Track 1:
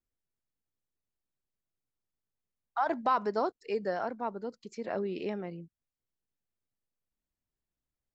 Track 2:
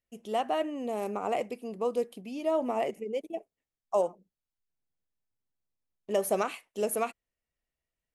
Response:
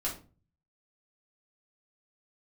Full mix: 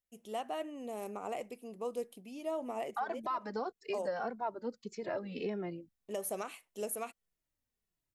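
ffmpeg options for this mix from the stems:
-filter_complex "[0:a]asplit=2[a][b];[b]adelay=2.3,afreqshift=-1.7[c];[a][c]amix=inputs=2:normalize=1,adelay=200,volume=3dB[d];[1:a]highshelf=f=6.4k:g=9,bandreject=f=4.7k:w=22,volume=-8.5dB[e];[d][e]amix=inputs=2:normalize=0,alimiter=level_in=3dB:limit=-24dB:level=0:latency=1:release=232,volume=-3dB"

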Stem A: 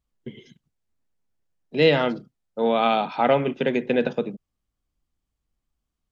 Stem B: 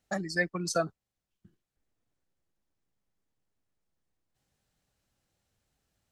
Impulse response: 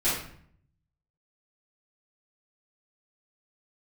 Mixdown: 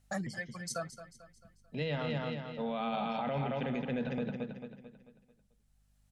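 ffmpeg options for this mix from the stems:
-filter_complex "[0:a]lowshelf=f=240:g=11.5,volume=-10.5dB,asplit=3[a][b][c];[b]volume=-6dB[d];[1:a]equalizer=f=10k:w=1.4:g=7,aeval=exprs='val(0)+0.000398*(sin(2*PI*50*n/s)+sin(2*PI*2*50*n/s)/2+sin(2*PI*3*50*n/s)/3+sin(2*PI*4*50*n/s)/4+sin(2*PI*5*50*n/s)/5)':c=same,volume=1dB,asplit=2[e][f];[f]volume=-22dB[g];[c]apad=whole_len=269885[h];[e][h]sidechaincompress=threshold=-48dB:ratio=8:attack=16:release=1290[i];[d][g]amix=inputs=2:normalize=0,aecho=0:1:221|442|663|884|1105|1326:1|0.45|0.202|0.0911|0.041|0.0185[j];[a][i][j]amix=inputs=3:normalize=0,equalizer=f=350:t=o:w=0.61:g=-13,alimiter=level_in=2.5dB:limit=-24dB:level=0:latency=1:release=13,volume=-2.5dB"

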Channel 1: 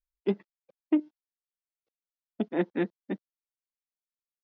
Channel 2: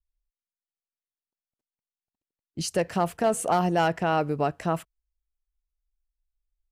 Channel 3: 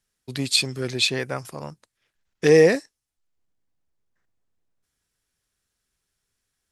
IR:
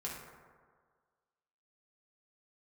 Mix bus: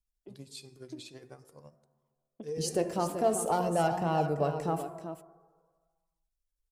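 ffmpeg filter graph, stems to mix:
-filter_complex "[0:a]volume=-2.5dB,asplit=2[a][b];[b]volume=-21dB[c];[1:a]lowshelf=f=120:g=-8,volume=0dB,asplit=3[d][e][f];[e]volume=-3.5dB[g];[f]volume=-7dB[h];[2:a]volume=-11.5dB,asplit=3[i][j][k];[j]volume=-14dB[l];[k]apad=whole_len=195711[m];[a][m]sidechaincompress=threshold=-52dB:ratio=8:attack=16:release=148[n];[n][i]amix=inputs=2:normalize=0,tremolo=f=12:d=0.8,acompressor=threshold=-36dB:ratio=6,volume=0dB[o];[3:a]atrim=start_sample=2205[p];[c][g][l]amix=inputs=3:normalize=0[q];[q][p]afir=irnorm=-1:irlink=0[r];[h]aecho=0:1:384:1[s];[d][o][r][s]amix=inputs=4:normalize=0,flanger=delay=0.9:depth=2.4:regen=49:speed=0.49:shape=triangular,equalizer=f=2k:w=0.7:g=-11"

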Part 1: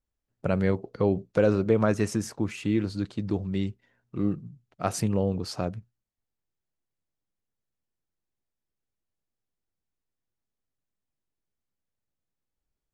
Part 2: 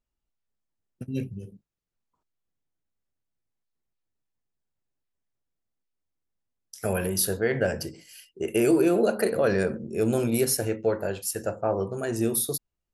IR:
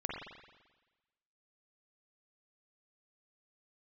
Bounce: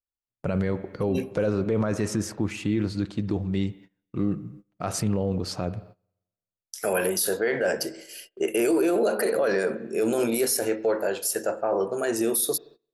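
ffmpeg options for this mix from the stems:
-filter_complex "[0:a]volume=2dB,asplit=2[a][b];[b]volume=-16dB[c];[1:a]highpass=330,acontrast=26,volume=0.5dB,asplit=2[d][e];[e]volume=-19.5dB[f];[2:a]atrim=start_sample=2205[g];[c][f]amix=inputs=2:normalize=0[h];[h][g]afir=irnorm=-1:irlink=0[i];[a][d][i]amix=inputs=3:normalize=0,adynamicequalizer=threshold=0.00355:dfrequency=2700:dqfactor=5.3:tfrequency=2700:tqfactor=5.3:attack=5:release=100:ratio=0.375:range=2:mode=cutabove:tftype=bell,agate=range=-21dB:threshold=-45dB:ratio=16:detection=peak,alimiter=limit=-15.5dB:level=0:latency=1:release=18"

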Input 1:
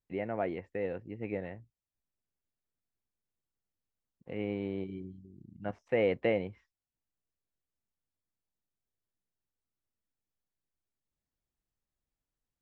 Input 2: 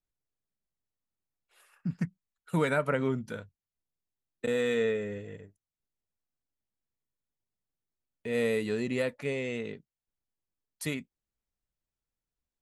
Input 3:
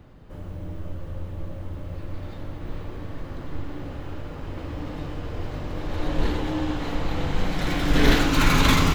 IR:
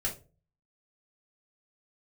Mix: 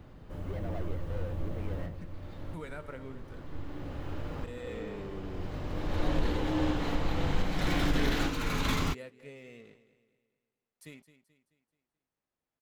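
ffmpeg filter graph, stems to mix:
-filter_complex "[0:a]lowshelf=f=480:g=5,asplit=2[a][b];[b]highpass=f=720:p=1,volume=33dB,asoftclip=type=tanh:threshold=-17dB[c];[a][c]amix=inputs=2:normalize=0,lowpass=f=1.2k:p=1,volume=-6dB,adelay=350,volume=-18dB[d];[1:a]bandreject=f=197.2:t=h:w=4,bandreject=f=394.4:t=h:w=4,bandreject=f=591.6:t=h:w=4,bandreject=f=788.8:t=h:w=4,bandreject=f=986:t=h:w=4,bandreject=f=1.1832k:t=h:w=4,bandreject=f=1.3804k:t=h:w=4,bandreject=f=1.5776k:t=h:w=4,bandreject=f=1.7748k:t=h:w=4,bandreject=f=1.972k:t=h:w=4,bandreject=f=2.1692k:t=h:w=4,bandreject=f=2.3664k:t=h:w=4,bandreject=f=2.5636k:t=h:w=4,bandreject=f=2.7608k:t=h:w=4,bandreject=f=2.958k:t=h:w=4,bandreject=f=3.1552k:t=h:w=4,bandreject=f=3.3524k:t=h:w=4,bandreject=f=3.5496k:t=h:w=4,bandreject=f=3.7468k:t=h:w=4,bandreject=f=3.944k:t=h:w=4,bandreject=f=4.1412k:t=h:w=4,bandreject=f=4.3384k:t=h:w=4,bandreject=f=4.5356k:t=h:w=4,bandreject=f=4.7328k:t=h:w=4,bandreject=f=4.93k:t=h:w=4,bandreject=f=5.1272k:t=h:w=4,bandreject=f=5.3244k:t=h:w=4,bandreject=f=5.5216k:t=h:w=4,bandreject=f=5.7188k:t=h:w=4,aeval=exprs='sgn(val(0))*max(abs(val(0))-0.00316,0)':c=same,volume=-15dB,asplit=3[e][f][g];[f]volume=-14.5dB[h];[2:a]volume=-2dB[i];[g]apad=whole_len=394659[j];[i][j]sidechaincompress=threshold=-48dB:ratio=8:attack=5.9:release=1450[k];[h]aecho=0:1:216|432|648|864|1080|1296:1|0.42|0.176|0.0741|0.0311|0.0131[l];[d][e][k][l]amix=inputs=4:normalize=0,alimiter=limit=-17.5dB:level=0:latency=1:release=433"

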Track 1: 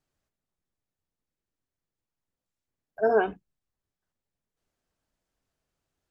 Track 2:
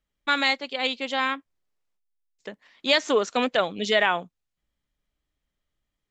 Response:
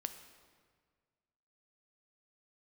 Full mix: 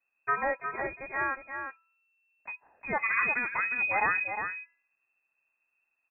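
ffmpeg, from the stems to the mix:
-filter_complex "[0:a]volume=0.5dB[a];[1:a]bandreject=f=342.4:t=h:w=4,bandreject=f=684.8:t=h:w=4,bandreject=f=1.0272k:t=h:w=4,bandreject=f=1.3696k:t=h:w=4,bandreject=f=1.712k:t=h:w=4,volume=-3dB,asplit=2[b][c];[c]volume=-7dB,aecho=0:1:357:1[d];[a][b][d]amix=inputs=3:normalize=0,firequalizer=gain_entry='entry(110,0);entry(180,14);entry(330,-25);entry(810,-1)':delay=0.05:min_phase=1,lowpass=f=2.3k:t=q:w=0.5098,lowpass=f=2.3k:t=q:w=0.6013,lowpass=f=2.3k:t=q:w=0.9,lowpass=f=2.3k:t=q:w=2.563,afreqshift=-2700"

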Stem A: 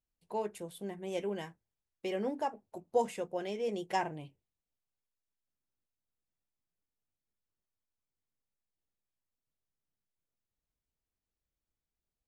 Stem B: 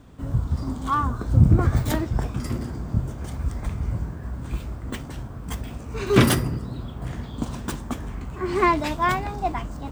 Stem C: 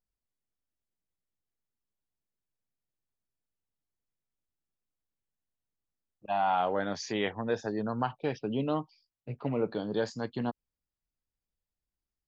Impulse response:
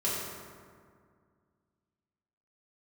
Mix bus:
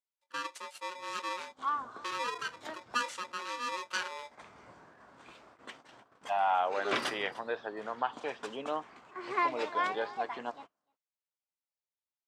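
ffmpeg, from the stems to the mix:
-filter_complex "[0:a]highpass=180,bass=f=250:g=13,treble=f=4k:g=14,aeval=exprs='val(0)*sgn(sin(2*PI*730*n/s))':c=same,volume=-2dB,asplit=2[a][b];[1:a]adelay=750,volume=-8.5dB,asplit=2[c][d];[d]volume=-19.5dB[e];[2:a]lowpass=f=3.6k:w=0.5412,lowpass=f=3.6k:w=1.3066,volume=0.5dB[f];[b]apad=whole_len=470491[g];[c][g]sidechaincompress=threshold=-48dB:ratio=8:attack=5.9:release=197[h];[e]aecho=0:1:299:1[i];[a][h][f][i]amix=inputs=4:normalize=0,agate=range=-12dB:threshold=-42dB:ratio=16:detection=peak,highpass=610,lowpass=5.2k"

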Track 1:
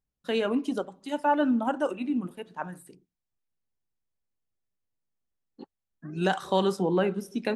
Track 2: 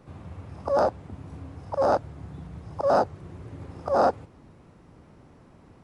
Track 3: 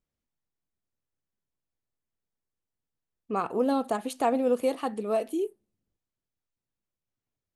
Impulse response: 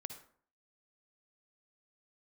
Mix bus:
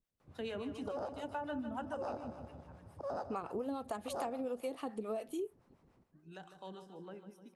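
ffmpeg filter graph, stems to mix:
-filter_complex "[0:a]adelay=100,volume=-9dB,afade=t=out:st=1.79:d=0.6:silence=0.237137,asplit=2[a][b];[b]volume=-10dB[c];[1:a]adelay=200,volume=-12.5dB,asplit=2[d][e];[e]volume=-11.5dB[f];[2:a]volume=-0.5dB[g];[c][f]amix=inputs=2:normalize=0,aecho=0:1:152|304|456|608|760|912|1064|1216|1368:1|0.58|0.336|0.195|0.113|0.0656|0.0381|0.0221|0.0128[h];[a][d][g][h]amix=inputs=4:normalize=0,acrossover=split=560[i][j];[i]aeval=exprs='val(0)*(1-0.7/2+0.7/2*cos(2*PI*7*n/s))':c=same[k];[j]aeval=exprs='val(0)*(1-0.7/2-0.7/2*cos(2*PI*7*n/s))':c=same[l];[k][l]amix=inputs=2:normalize=0,acompressor=threshold=-36dB:ratio=6"

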